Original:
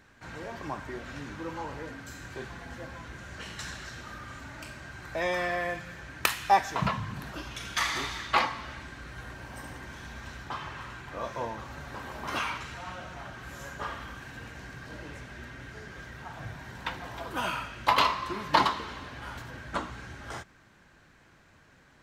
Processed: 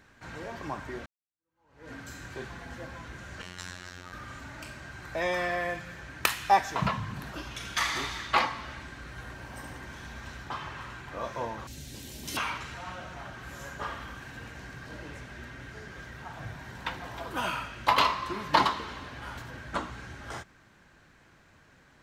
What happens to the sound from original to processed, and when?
1.06–1.92 s: fade in exponential
3.42–4.13 s: robot voice 89.9 Hz
11.67–12.37 s: FFT filter 300 Hz 0 dB, 1.2 kHz -22 dB, 1.9 kHz -8 dB, 3.3 kHz +4 dB, 8.7 kHz +13 dB

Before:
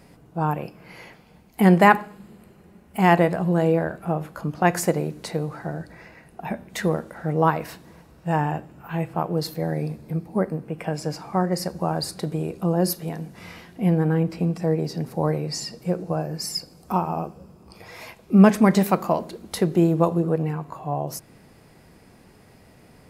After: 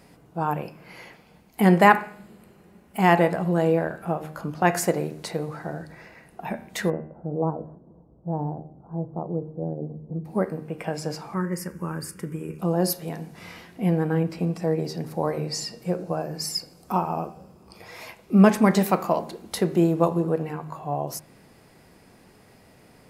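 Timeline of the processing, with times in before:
6.90–10.25 s: Gaussian low-pass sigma 12 samples
11.34–12.59 s: static phaser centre 1.7 kHz, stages 4
whole clip: bass shelf 170 Hz -5 dB; de-hum 77.35 Hz, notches 37

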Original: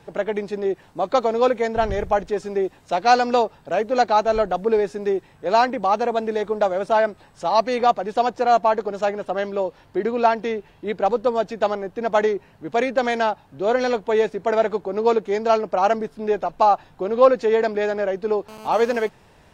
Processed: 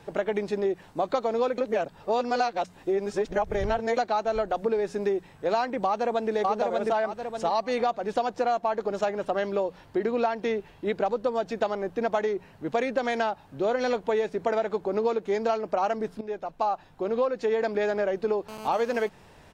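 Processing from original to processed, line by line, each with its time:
1.58–3.97 s: reverse
5.85–6.33 s: echo throw 590 ms, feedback 25%, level 0 dB
16.21–17.65 s: fade in, from -14.5 dB
whole clip: hum notches 60/120/180 Hz; compression 10:1, threshold -22 dBFS

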